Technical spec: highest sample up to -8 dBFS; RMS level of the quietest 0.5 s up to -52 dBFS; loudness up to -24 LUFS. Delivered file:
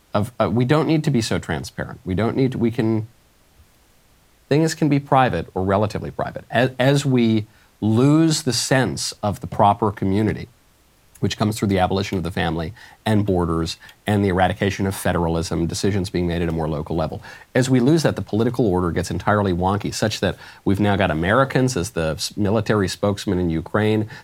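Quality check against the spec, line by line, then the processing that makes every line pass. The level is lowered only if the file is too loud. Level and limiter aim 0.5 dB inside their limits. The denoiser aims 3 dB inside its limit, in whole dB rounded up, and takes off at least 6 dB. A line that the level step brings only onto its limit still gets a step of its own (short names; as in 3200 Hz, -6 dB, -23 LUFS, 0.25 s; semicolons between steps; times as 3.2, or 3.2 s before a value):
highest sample -2.5 dBFS: fail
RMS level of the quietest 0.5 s -56 dBFS: OK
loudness -20.5 LUFS: fail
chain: gain -4 dB; limiter -8.5 dBFS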